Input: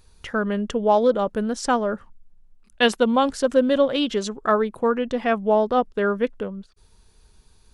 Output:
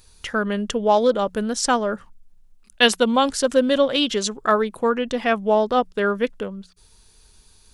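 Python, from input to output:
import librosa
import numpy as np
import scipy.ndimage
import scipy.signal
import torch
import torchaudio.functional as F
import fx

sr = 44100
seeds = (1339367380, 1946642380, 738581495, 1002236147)

y = fx.high_shelf(x, sr, hz=2400.0, db=9.5)
y = fx.hum_notches(y, sr, base_hz=60, count=3)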